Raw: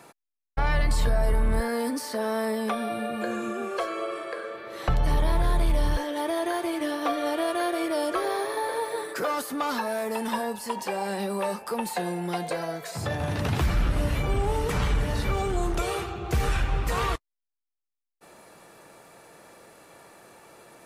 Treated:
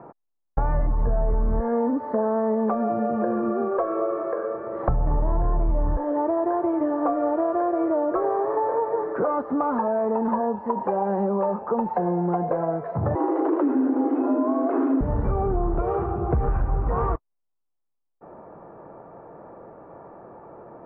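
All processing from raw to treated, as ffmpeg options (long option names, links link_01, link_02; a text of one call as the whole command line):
ffmpeg -i in.wav -filter_complex "[0:a]asettb=1/sr,asplit=3[link_01][link_02][link_03];[link_01]atrim=end=13.154[link_04];[link_02]atrim=start=13.15:end=15.01,asetpts=PTS-STARTPTS,afade=type=in:duration=0.004:curve=qsin,afade=type=out:start_time=1.856:duration=0.004:curve=qsin,highshelf=frequency=4500:gain=6,afreqshift=220[link_05];[link_03]atrim=start=15.006[link_06];[link_04][link_05]acrossfade=duration=0.004:curve1=hsin:curve2=qsin[link_07];[link_07][link_06]acrossfade=duration=0.004:curve1=qsin:curve2=hsin,lowpass=frequency=1100:width=0.5412,lowpass=frequency=1100:width=1.3066,acompressor=threshold=-29dB:ratio=4,volume=9dB" out.wav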